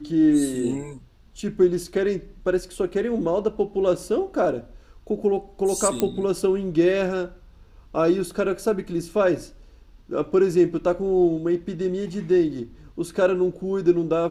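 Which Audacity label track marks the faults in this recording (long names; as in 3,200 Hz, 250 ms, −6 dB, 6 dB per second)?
6.000000	6.000000	click −8 dBFS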